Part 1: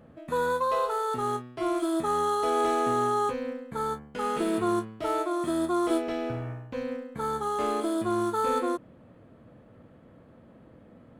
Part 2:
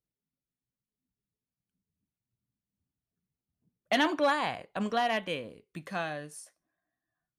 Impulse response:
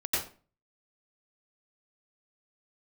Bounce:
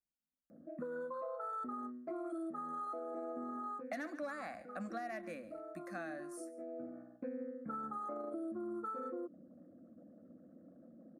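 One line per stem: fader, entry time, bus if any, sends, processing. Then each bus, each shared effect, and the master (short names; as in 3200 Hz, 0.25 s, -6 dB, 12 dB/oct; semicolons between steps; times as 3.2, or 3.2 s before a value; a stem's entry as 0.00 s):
-2.0 dB, 0.50 s, no send, no echo send, formant sharpening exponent 2; HPF 120 Hz 24 dB/oct; compressor, threshold -28 dBFS, peak gain reduction 7 dB; auto duck -11 dB, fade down 0.20 s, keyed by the second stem
-6.5 dB, 0.00 s, no send, echo send -19.5 dB, dry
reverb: off
echo: echo 0.14 s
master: fixed phaser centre 630 Hz, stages 8; compressor, threshold -39 dBFS, peak gain reduction 9.5 dB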